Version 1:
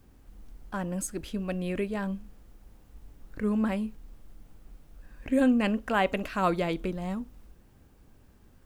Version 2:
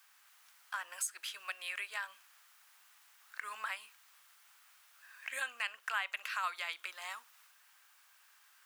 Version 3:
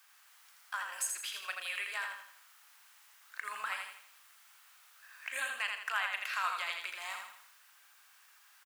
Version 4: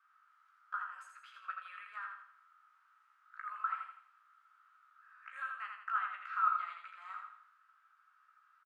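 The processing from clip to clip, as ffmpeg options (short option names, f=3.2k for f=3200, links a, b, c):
-af "highpass=f=1.2k:w=0.5412,highpass=f=1.2k:w=1.3066,acompressor=threshold=-44dB:ratio=2.5,volume=6.5dB"
-filter_complex "[0:a]asplit=2[a][b];[b]adelay=37,volume=-12dB[c];[a][c]amix=inputs=2:normalize=0,asplit=2[d][e];[e]aecho=0:1:82|164|246|328|410:0.596|0.25|0.105|0.0441|0.0185[f];[d][f]amix=inputs=2:normalize=0,volume=1dB"
-filter_complex "[0:a]bandpass=f=1.3k:t=q:w=14:csg=0,asplit=2[a][b];[b]adelay=16,volume=-5.5dB[c];[a][c]amix=inputs=2:normalize=0,volume=7.5dB"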